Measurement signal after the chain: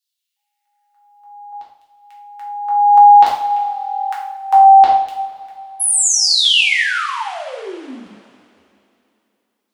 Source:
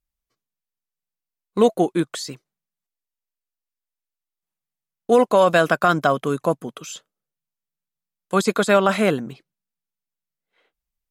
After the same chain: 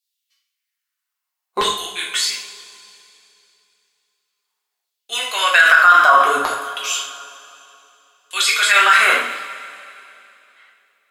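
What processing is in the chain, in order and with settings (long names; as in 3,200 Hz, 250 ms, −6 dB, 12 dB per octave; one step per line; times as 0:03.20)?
auto-filter high-pass saw down 0.62 Hz 690–4,000 Hz
coupled-rooms reverb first 0.57 s, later 2.9 s, from −18 dB, DRR −4.5 dB
boost into a limiter +6 dB
level −1 dB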